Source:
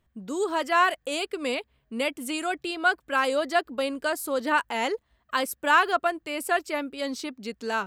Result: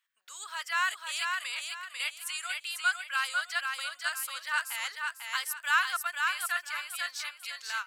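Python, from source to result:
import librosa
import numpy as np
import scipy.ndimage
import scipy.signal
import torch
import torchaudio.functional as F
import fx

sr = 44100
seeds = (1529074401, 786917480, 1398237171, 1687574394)

y = fx.dynamic_eq(x, sr, hz=2400.0, q=1.1, threshold_db=-37.0, ratio=4.0, max_db=-4)
y = scipy.signal.sosfilt(scipy.signal.butter(4, 1400.0, 'highpass', fs=sr, output='sos'), y)
y = fx.echo_feedback(y, sr, ms=496, feedback_pct=31, wet_db=-4.0)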